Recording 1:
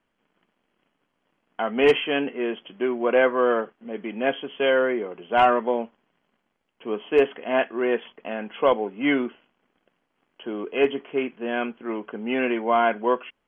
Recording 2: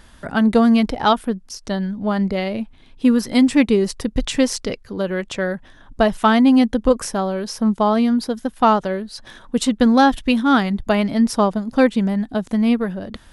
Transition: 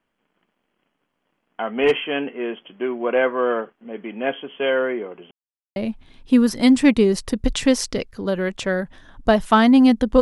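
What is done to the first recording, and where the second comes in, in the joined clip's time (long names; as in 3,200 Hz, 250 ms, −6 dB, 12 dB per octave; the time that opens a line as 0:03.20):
recording 1
0:05.31–0:05.76: silence
0:05.76: continue with recording 2 from 0:02.48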